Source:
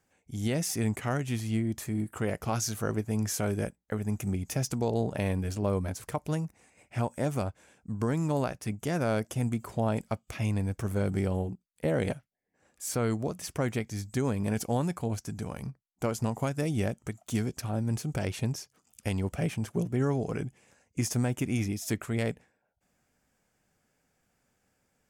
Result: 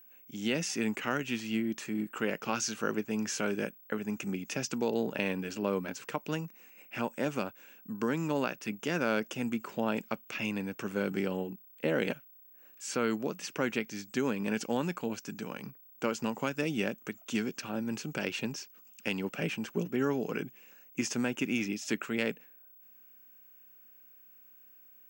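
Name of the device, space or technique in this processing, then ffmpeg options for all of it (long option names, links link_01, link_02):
old television with a line whistle: -af "highpass=frequency=190:width=0.5412,highpass=frequency=190:width=1.3066,equalizer=frequency=690:width_type=q:width=4:gain=-7,equalizer=frequency=1500:width_type=q:width=4:gain=5,equalizer=frequency=2700:width_type=q:width=4:gain=10,lowpass=frequency=7200:width=0.5412,lowpass=frequency=7200:width=1.3066,aeval=exprs='val(0)+0.002*sin(2*PI*15734*n/s)':channel_layout=same"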